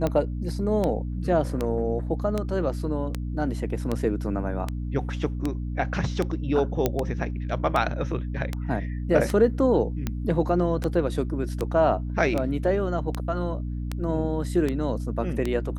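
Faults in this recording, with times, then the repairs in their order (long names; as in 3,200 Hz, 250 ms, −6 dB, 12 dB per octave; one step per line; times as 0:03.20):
mains hum 60 Hz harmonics 5 −30 dBFS
scratch tick 78 rpm −13 dBFS
0:06.86: click −8 dBFS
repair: click removal
hum removal 60 Hz, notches 5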